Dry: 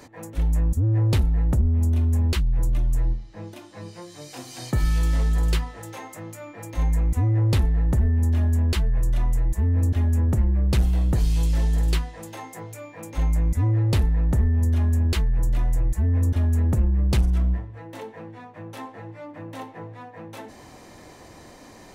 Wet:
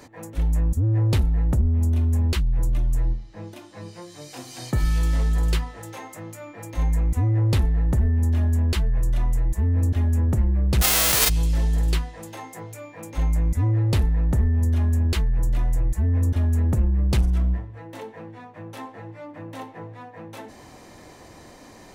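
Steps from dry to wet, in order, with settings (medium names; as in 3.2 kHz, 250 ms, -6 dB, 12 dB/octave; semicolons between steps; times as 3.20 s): 10.81–11.28 s: formants flattened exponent 0.1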